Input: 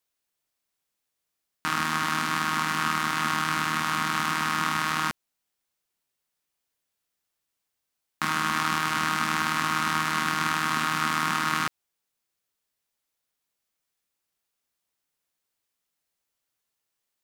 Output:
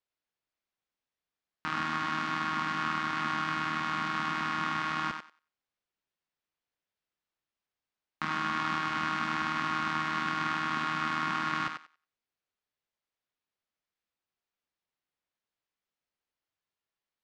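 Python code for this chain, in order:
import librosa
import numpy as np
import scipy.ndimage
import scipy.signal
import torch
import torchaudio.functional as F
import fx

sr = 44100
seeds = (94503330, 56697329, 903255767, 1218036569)

y = fx.air_absorb(x, sr, metres=160.0)
y = fx.echo_thinned(y, sr, ms=93, feedback_pct=18, hz=390.0, wet_db=-6.0)
y = y * librosa.db_to_amplitude(-5.0)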